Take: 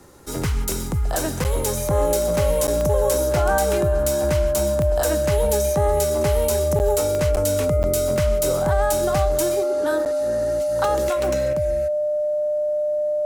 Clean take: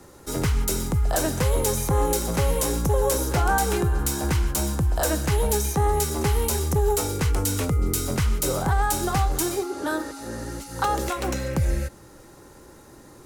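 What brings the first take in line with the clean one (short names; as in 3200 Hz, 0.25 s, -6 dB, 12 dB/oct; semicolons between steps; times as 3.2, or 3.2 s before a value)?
de-click; notch 600 Hz, Q 30; interpolate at 1.44/2.67/6.79/7.36/7.83/10.05, 9.2 ms; gain 0 dB, from 11.53 s +7 dB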